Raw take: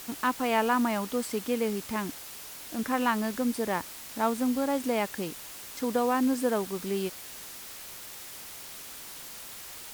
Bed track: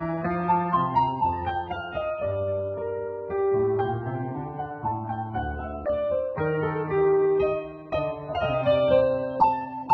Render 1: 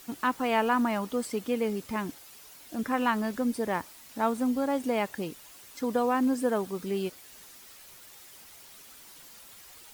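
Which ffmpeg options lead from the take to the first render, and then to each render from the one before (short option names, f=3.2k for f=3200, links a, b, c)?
-af "afftdn=nr=9:nf=-44"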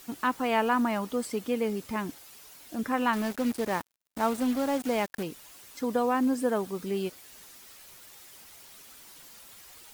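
-filter_complex "[0:a]asettb=1/sr,asplit=3[a][b][c];[a]atrim=end=3.134[d];[b]atrim=start=3.13:end=5.23,asetpts=PTS-STARTPTS,afade=t=in:d=0.004:c=qsin,afade=t=out:st=2.096:d=0.004:c=qsin,acrusher=bits=5:mix=0:aa=0.5[e];[c]atrim=start=5.226[f];[d][e]acrossfade=d=0.004:c1=hsin:c2=qsin[g];[g][f]acrossfade=d=0.004:c1=qsin:c2=hsin"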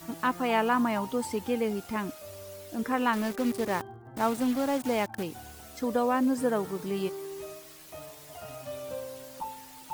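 -filter_complex "[1:a]volume=-18dB[a];[0:a][a]amix=inputs=2:normalize=0"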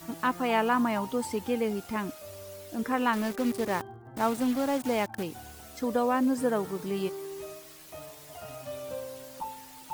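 -af anull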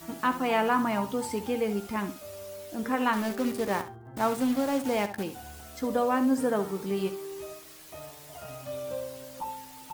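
-filter_complex "[0:a]asplit=2[a][b];[b]adelay=15,volume=-10.5dB[c];[a][c]amix=inputs=2:normalize=0,asplit=2[d][e];[e]aecho=0:1:68|136:0.251|0.0402[f];[d][f]amix=inputs=2:normalize=0"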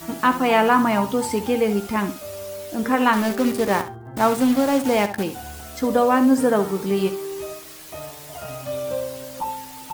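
-af "volume=8.5dB"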